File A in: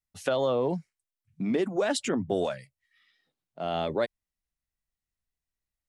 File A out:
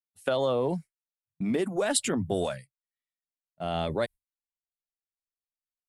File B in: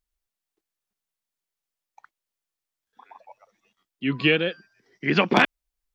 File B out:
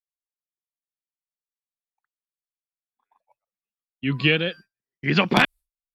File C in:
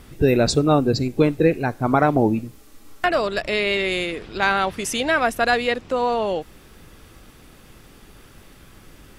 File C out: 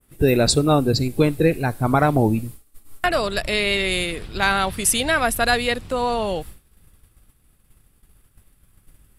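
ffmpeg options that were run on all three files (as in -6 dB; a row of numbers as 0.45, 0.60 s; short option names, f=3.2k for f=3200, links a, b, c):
-af "adynamicequalizer=threshold=0.01:dfrequency=4300:dqfactor=1.5:tfrequency=4300:tqfactor=1.5:attack=5:release=100:ratio=0.375:range=2.5:mode=boostabove:tftype=bell,agate=range=-33dB:threshold=-34dB:ratio=3:detection=peak,aexciter=amount=9:drive=1.4:freq=8.5k,lowpass=11k,asubboost=boost=3:cutoff=170"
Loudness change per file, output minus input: 0.0, +0.5, +0.5 LU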